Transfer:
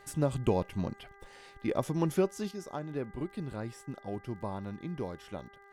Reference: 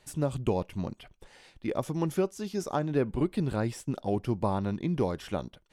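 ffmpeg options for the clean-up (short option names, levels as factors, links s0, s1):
-af "adeclick=t=4,bandreject=f=398.7:t=h:w=4,bandreject=f=797.4:t=h:w=4,bandreject=f=1196.1:t=h:w=4,bandreject=f=1594.8:t=h:w=4,bandreject=f=1993.5:t=h:w=4,asetnsamples=n=441:p=0,asendcmd='2.51 volume volume 9dB',volume=1"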